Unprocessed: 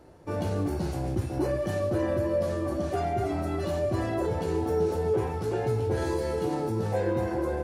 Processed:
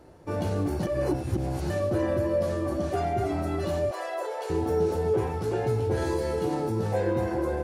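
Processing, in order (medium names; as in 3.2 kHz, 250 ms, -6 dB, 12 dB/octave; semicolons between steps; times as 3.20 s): 0.83–1.70 s: reverse; 3.91–4.50 s: steep high-pass 480 Hz 36 dB/octave; trim +1 dB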